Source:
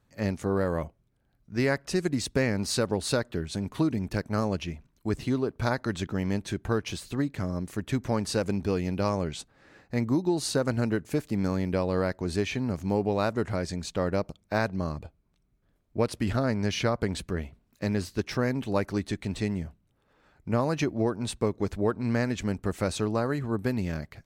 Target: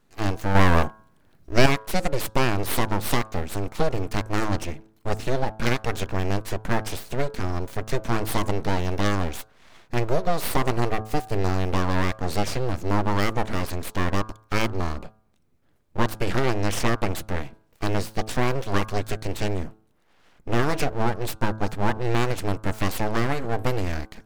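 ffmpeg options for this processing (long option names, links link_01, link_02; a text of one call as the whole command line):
ffmpeg -i in.wav -filter_complex "[0:a]aeval=exprs='abs(val(0))':channel_layout=same,bandreject=frequency=108.7:width_type=h:width=4,bandreject=frequency=217.4:width_type=h:width=4,bandreject=frequency=326.1:width_type=h:width=4,bandreject=frequency=434.8:width_type=h:width=4,bandreject=frequency=543.5:width_type=h:width=4,bandreject=frequency=652.2:width_type=h:width=4,bandreject=frequency=760.9:width_type=h:width=4,bandreject=frequency=869.6:width_type=h:width=4,bandreject=frequency=978.3:width_type=h:width=4,bandreject=frequency=1087:width_type=h:width=4,bandreject=frequency=1195.7:width_type=h:width=4,bandreject=frequency=1304.4:width_type=h:width=4,bandreject=frequency=1413.1:width_type=h:width=4,bandreject=frequency=1521.8:width_type=h:width=4,bandreject=frequency=1630.5:width_type=h:width=4,asettb=1/sr,asplit=3[link_01][link_02][link_03];[link_01]atrim=end=0.554[link_04];[link_02]atrim=start=0.55:end=1.66,asetpts=PTS-STARTPTS,afade=type=in:duration=0.004:curve=qsin,afade=type=out:start_time=1.106:duration=0.004:curve=qsin,acontrast=84[link_05];[link_03]atrim=start=1.656[link_06];[link_04][link_05]acrossfade=duration=0.004:curve1=hsin:curve2=qsin[link_07];[link_07][link_06]acrossfade=duration=0.004:curve1=qsin:curve2=hsin,volume=6.5dB" out.wav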